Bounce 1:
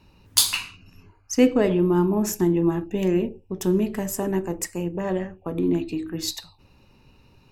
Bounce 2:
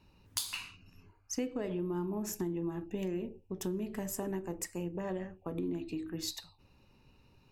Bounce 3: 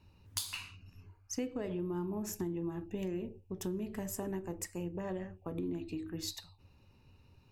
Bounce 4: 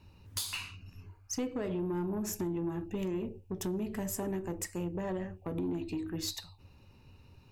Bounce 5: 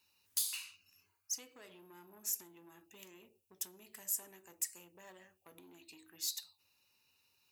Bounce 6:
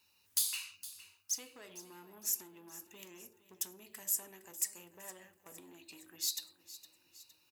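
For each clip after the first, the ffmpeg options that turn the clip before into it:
-af "acompressor=threshold=0.0631:ratio=6,volume=0.376"
-af "equalizer=f=90:t=o:w=0.58:g=10.5,volume=0.794"
-af "asoftclip=type=tanh:threshold=0.0237,volume=1.78"
-af "aderivative,volume=1.19"
-af "aecho=1:1:462|924|1386|1848|2310:0.158|0.084|0.0445|0.0236|0.0125,volume=1.41"

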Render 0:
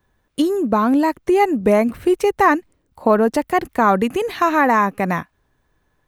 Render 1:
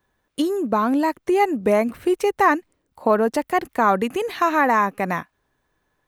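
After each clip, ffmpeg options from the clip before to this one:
-af "lowshelf=f=170:g=-8.5,volume=0.794"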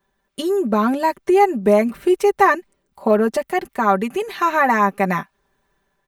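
-af "aecho=1:1:5.1:0.79,dynaudnorm=f=220:g=5:m=1.88,volume=0.794"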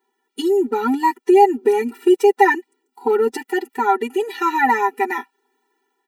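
-af "afftfilt=real='re*eq(mod(floor(b*sr/1024/250),2),1)':imag='im*eq(mod(floor(b*sr/1024/250),2),1)':win_size=1024:overlap=0.75,volume=1.33"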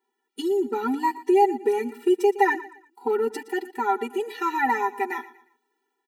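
-af "aecho=1:1:117|234|351:0.141|0.0494|0.0173,volume=0.473"

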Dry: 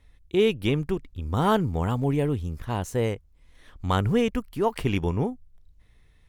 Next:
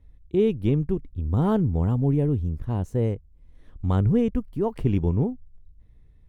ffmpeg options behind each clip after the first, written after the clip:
-af "tiltshelf=f=680:g=9.5,volume=0.596"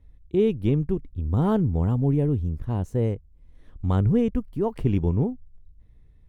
-af anull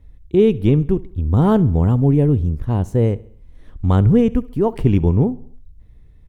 -af "aecho=1:1:68|136|204|272:0.0841|0.0429|0.0219|0.0112,volume=2.37"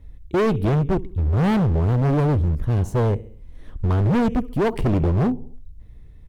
-af "volume=8.91,asoftclip=hard,volume=0.112,volume=1.33"

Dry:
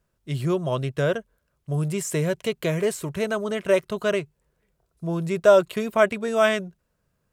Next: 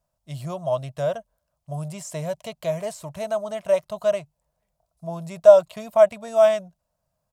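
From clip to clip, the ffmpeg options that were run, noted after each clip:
-filter_complex "[0:a]firequalizer=gain_entry='entry(150,0);entry(400,-13);entry(620,12);entry(1500,-5);entry(4900,4)':delay=0.05:min_phase=1,acrossover=split=6800[s0][s1];[s1]alimiter=level_in=2.11:limit=0.0631:level=0:latency=1:release=222,volume=0.473[s2];[s0][s2]amix=inputs=2:normalize=0,volume=0.501"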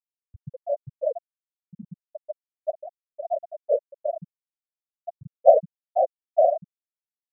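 -af "aeval=exprs='val(0)+0.5*0.1*sgn(val(0))':c=same,afftfilt=real='hypot(re,im)*cos(2*PI*random(0))':imag='hypot(re,im)*sin(2*PI*random(1))':win_size=512:overlap=0.75,afftfilt=real='re*gte(hypot(re,im),0.447)':imag='im*gte(hypot(re,im),0.447)':win_size=1024:overlap=0.75,volume=1.12"

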